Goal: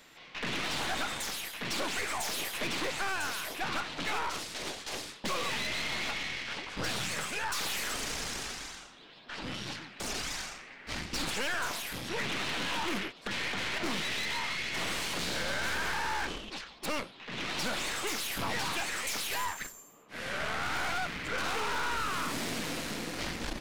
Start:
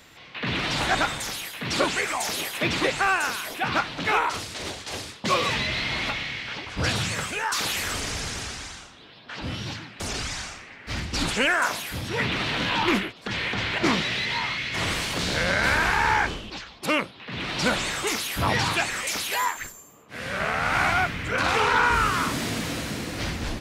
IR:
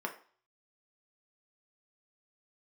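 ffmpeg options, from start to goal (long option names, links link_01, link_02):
-af "equalizer=frequency=87:width_type=o:width=1.1:gain=-13,aeval=exprs='(tanh(25.1*val(0)+0.8)-tanh(0.8))/25.1':channel_layout=same,acompressor=threshold=-28dB:ratio=6"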